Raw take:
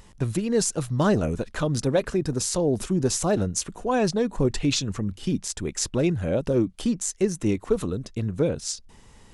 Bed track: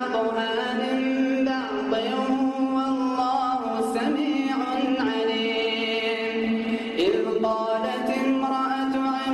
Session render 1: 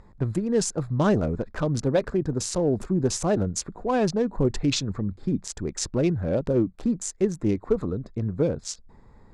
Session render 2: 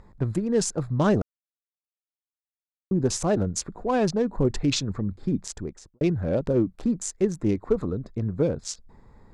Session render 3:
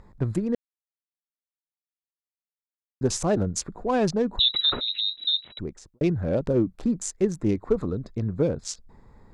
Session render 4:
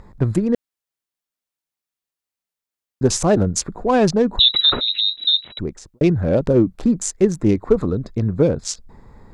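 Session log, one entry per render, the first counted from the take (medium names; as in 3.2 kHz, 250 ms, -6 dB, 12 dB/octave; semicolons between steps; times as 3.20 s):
local Wiener filter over 15 samples; low-pass 7.9 kHz 12 dB/octave
1.22–2.91 s: mute; 5.44–6.01 s: studio fade out
0.55–3.01 s: mute; 4.39–5.59 s: frequency inversion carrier 3.9 kHz; 7.84–8.38 s: dynamic bell 4.5 kHz, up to +5 dB, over -58 dBFS, Q 0.76
trim +7.5 dB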